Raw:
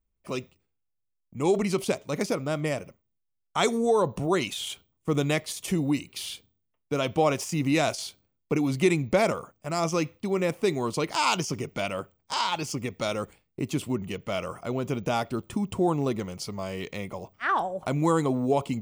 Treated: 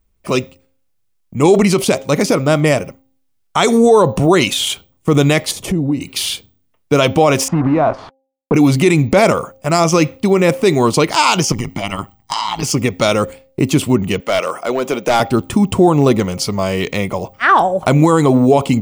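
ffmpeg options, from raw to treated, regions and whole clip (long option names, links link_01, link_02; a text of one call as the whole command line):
ffmpeg -i in.wav -filter_complex "[0:a]asettb=1/sr,asplit=3[link_01][link_02][link_03];[link_01]atrim=end=5.514[link_04];[link_02]atrim=start=5.51:end=6.01,asetpts=PTS-STARTPTS,afade=type=in:duration=0.004:curve=qsin,afade=type=out:start_time=0.496:duration=0.004:curve=qsin,tiltshelf=frequency=1100:gain=8.5,acompressor=threshold=-37dB:ratio=2.5:attack=3.2:release=140:knee=1:detection=peak[link_05];[link_03]atrim=start=6.006[link_06];[link_04][link_05]acrossfade=duration=0.004:curve1=hsin:curve2=qsin[link_07];[link_07][link_06]acrossfade=duration=0.004:curve1=qsin:curve2=hsin,asettb=1/sr,asplit=3[link_08][link_09][link_10];[link_08]atrim=end=7.484[link_11];[link_09]atrim=start=7.48:end=8.54,asetpts=PTS-STARTPTS,afade=type=in:duration=0.004:curve=qsin,afade=type=out:start_time=1.056:duration=0.004:curve=qsin,acompressor=threshold=-27dB:ratio=4:attack=3.2:release=140:knee=1:detection=peak,acrusher=bits=5:mix=0:aa=0.5,lowpass=frequency=1000:width_type=q:width=1.7[link_12];[link_10]atrim=start=8.536[link_13];[link_11][link_12]acrossfade=duration=0.004:curve1=hsin:curve2=qsin[link_14];[link_14][link_13]acrossfade=duration=0.004:curve1=qsin:curve2=hsin,asettb=1/sr,asplit=3[link_15][link_16][link_17];[link_15]atrim=end=11.524[link_18];[link_16]atrim=start=11.52:end=12.63,asetpts=PTS-STARTPTS,afade=type=in:duration=0.004:curve=qsin,afade=type=out:start_time=1.106:duration=0.004:curve=qsin,aecho=1:1:1:0.95,atrim=end_sample=48951,acompressor=threshold=-29dB:ratio=6:attack=3.2:release=140:knee=1:detection=peak,tremolo=f=110:d=0.857[link_19];[link_17]atrim=start=12.626[link_20];[link_18][link_19]acrossfade=duration=0.004:curve1=hsin:curve2=qsin[link_21];[link_21][link_20]acrossfade=duration=0.004:curve1=qsin:curve2=hsin,asettb=1/sr,asplit=3[link_22][link_23][link_24];[link_22]atrim=end=14.204[link_25];[link_23]atrim=start=14.2:end=15.2,asetpts=PTS-STARTPTS,afade=type=in:duration=0.004:curve=qsin,afade=type=out:start_time=0.996:duration=0.004:curve=qsin,highpass=380,aeval=exprs='clip(val(0),-1,0.0447)':channel_layout=same[link_26];[link_24]atrim=start=15.196[link_27];[link_25][link_26]acrossfade=duration=0.004:curve1=hsin:curve2=qsin[link_28];[link_28][link_27]acrossfade=duration=0.004:curve1=qsin:curve2=hsin,bandreject=frequency=266.6:width_type=h:width=4,bandreject=frequency=533.2:width_type=h:width=4,bandreject=frequency=799.8:width_type=h:width=4,alimiter=level_in=17dB:limit=-1dB:release=50:level=0:latency=1,volume=-1dB" out.wav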